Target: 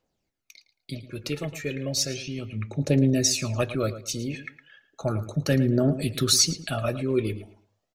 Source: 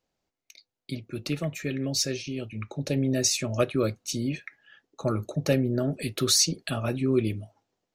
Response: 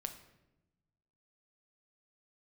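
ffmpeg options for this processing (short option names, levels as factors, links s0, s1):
-filter_complex "[0:a]aphaser=in_gain=1:out_gain=1:delay=2.4:decay=0.48:speed=0.34:type=triangular,asplit=2[s0][s1];[s1]adelay=111,lowpass=f=4400:p=1,volume=0.224,asplit=2[s2][s3];[s3]adelay=111,lowpass=f=4400:p=1,volume=0.27,asplit=2[s4][s5];[s5]adelay=111,lowpass=f=4400:p=1,volume=0.27[s6];[s0][s2][s4][s6]amix=inputs=4:normalize=0"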